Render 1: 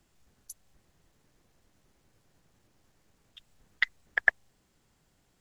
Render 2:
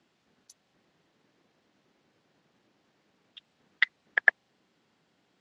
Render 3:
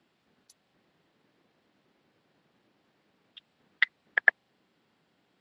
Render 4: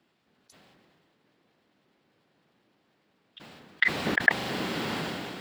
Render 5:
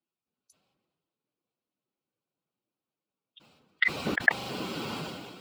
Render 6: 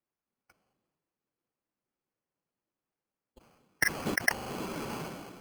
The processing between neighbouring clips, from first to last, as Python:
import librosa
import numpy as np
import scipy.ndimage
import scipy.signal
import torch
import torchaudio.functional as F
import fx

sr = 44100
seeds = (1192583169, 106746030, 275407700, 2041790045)

y1 = scipy.signal.sosfilt(scipy.signal.cheby1(2, 1.0, [220.0, 3900.0], 'bandpass', fs=sr, output='sos'), x)
y1 = y1 * librosa.db_to_amplitude(3.0)
y2 = fx.peak_eq(y1, sr, hz=6300.0, db=-7.5, octaves=0.48)
y3 = fx.sustainer(y2, sr, db_per_s=22.0)
y4 = fx.bin_expand(y3, sr, power=1.5)
y5 = fx.sample_hold(y4, sr, seeds[0], rate_hz=3700.0, jitter_pct=0)
y5 = y5 * librosa.db_to_amplitude(-2.0)